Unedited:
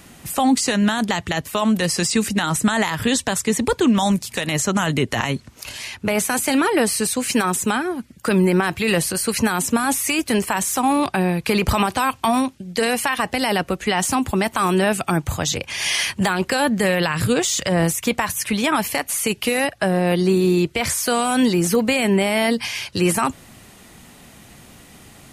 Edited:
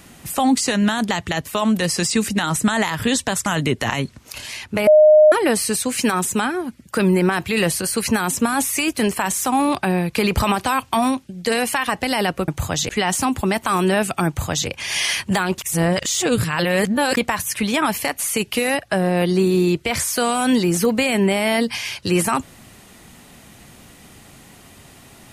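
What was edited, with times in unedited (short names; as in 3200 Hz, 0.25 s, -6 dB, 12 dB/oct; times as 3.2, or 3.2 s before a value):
3.46–4.77 cut
6.18–6.63 bleep 613 Hz -6.5 dBFS
15.17–15.58 copy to 13.79
16.48–18.07 reverse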